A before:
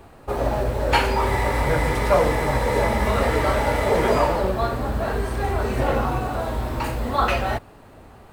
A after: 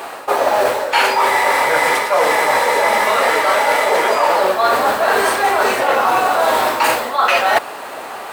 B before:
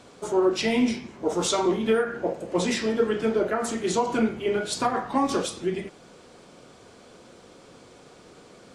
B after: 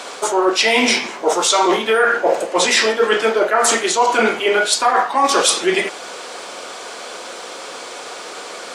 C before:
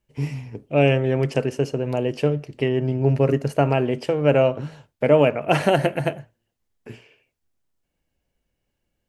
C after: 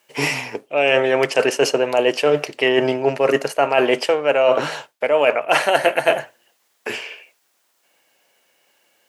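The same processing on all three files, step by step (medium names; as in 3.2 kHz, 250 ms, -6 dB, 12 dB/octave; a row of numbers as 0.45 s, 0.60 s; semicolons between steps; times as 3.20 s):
high-pass 670 Hz 12 dB/octave; reverse; compression 16:1, threshold -34 dBFS; reverse; peak normalisation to -1.5 dBFS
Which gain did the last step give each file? +23.0 dB, +23.0 dB, +21.5 dB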